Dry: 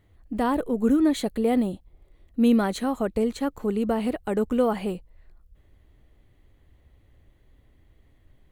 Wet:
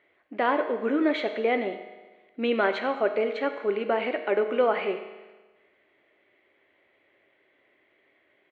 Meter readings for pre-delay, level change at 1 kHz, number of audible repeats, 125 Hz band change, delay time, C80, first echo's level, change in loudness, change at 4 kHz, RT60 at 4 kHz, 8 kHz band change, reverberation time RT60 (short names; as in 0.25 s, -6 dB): 6 ms, +2.0 dB, 1, under -10 dB, 95 ms, 10.5 dB, -17.0 dB, -1.5 dB, +1.0 dB, 1.3 s, under -20 dB, 1.3 s